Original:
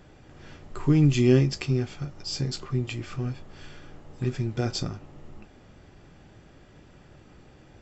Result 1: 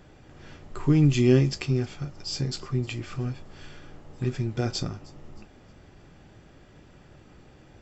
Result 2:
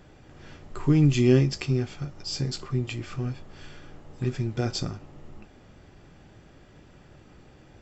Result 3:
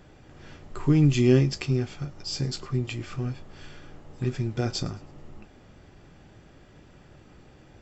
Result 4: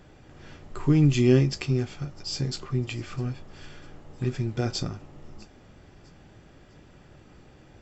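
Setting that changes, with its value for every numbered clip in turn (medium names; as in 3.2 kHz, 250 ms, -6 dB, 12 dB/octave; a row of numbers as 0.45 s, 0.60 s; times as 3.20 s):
feedback echo behind a high-pass, time: 311 ms, 61 ms, 108 ms, 652 ms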